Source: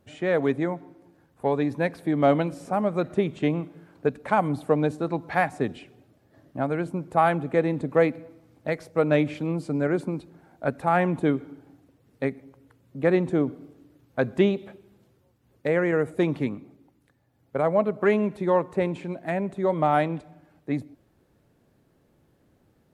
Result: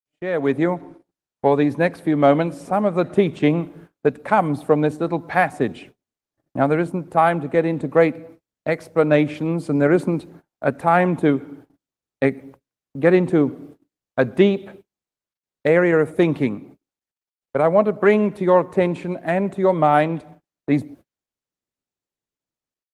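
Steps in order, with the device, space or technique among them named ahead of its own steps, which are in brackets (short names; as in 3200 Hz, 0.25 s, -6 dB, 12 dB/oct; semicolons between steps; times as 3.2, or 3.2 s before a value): 12.25–13.57 dynamic EQ 630 Hz, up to -5 dB, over -41 dBFS, Q 6.1; video call (HPF 110 Hz 6 dB/oct; AGC gain up to 13 dB; gate -40 dBFS, range -44 dB; gain -2 dB; Opus 24 kbps 48000 Hz)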